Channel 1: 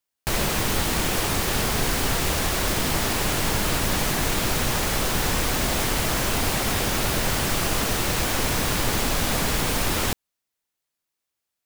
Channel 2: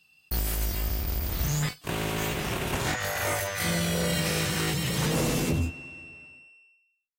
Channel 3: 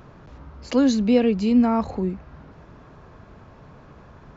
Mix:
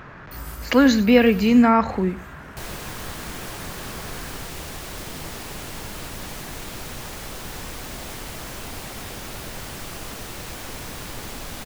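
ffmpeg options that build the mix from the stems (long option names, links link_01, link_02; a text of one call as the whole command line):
ffmpeg -i stem1.wav -i stem2.wav -i stem3.wav -filter_complex "[0:a]adelay=2300,volume=-11dB[link_01];[1:a]volume=-9dB,afade=type=out:start_time=1.36:duration=0.4:silence=0.266073[link_02];[2:a]equalizer=frequency=1800:width_type=o:width=1.4:gain=13.5,volume=2dB,asplit=2[link_03][link_04];[link_04]volume=-17dB,aecho=0:1:95:1[link_05];[link_01][link_02][link_03][link_05]amix=inputs=4:normalize=0" out.wav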